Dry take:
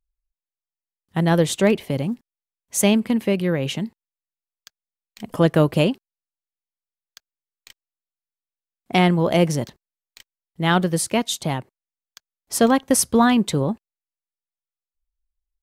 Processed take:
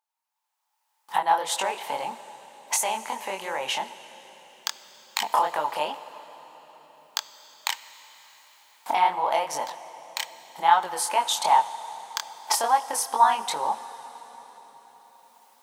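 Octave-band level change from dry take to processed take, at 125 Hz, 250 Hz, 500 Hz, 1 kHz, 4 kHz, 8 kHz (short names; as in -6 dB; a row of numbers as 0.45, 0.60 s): under -30 dB, -27.5 dB, -10.5 dB, +5.5 dB, -1.0 dB, -2.5 dB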